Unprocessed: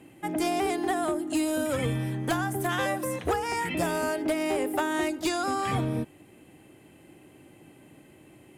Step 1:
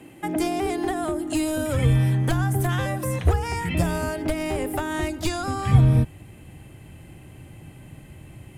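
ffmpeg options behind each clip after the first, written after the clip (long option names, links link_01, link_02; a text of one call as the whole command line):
ffmpeg -i in.wav -filter_complex "[0:a]asubboost=boost=10:cutoff=100,acrossover=split=400[link_01][link_02];[link_02]acompressor=threshold=-34dB:ratio=6[link_03];[link_01][link_03]amix=inputs=2:normalize=0,volume=6dB" out.wav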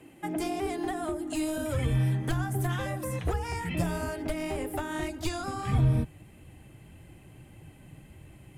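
ffmpeg -i in.wav -af "flanger=delay=1.6:depth=5.4:regen=-44:speed=1.7:shape=triangular,volume=-2.5dB" out.wav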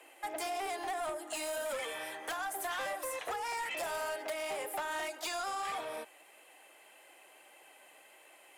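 ffmpeg -i in.wav -af "highpass=frequency=550:width=0.5412,highpass=frequency=550:width=1.3066,asoftclip=type=tanh:threshold=-35dB,volume=3dB" out.wav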